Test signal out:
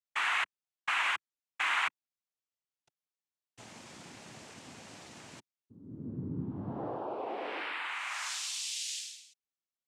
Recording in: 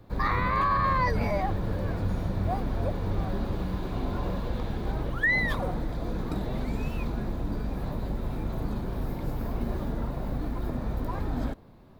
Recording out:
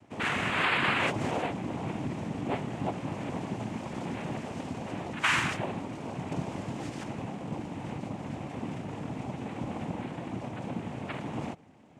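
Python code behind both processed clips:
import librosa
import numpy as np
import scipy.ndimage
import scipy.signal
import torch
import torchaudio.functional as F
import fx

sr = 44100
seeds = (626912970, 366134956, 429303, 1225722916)

y = fx.noise_vocoder(x, sr, seeds[0], bands=4)
y = y * 10.0 ** (-2.0 / 20.0)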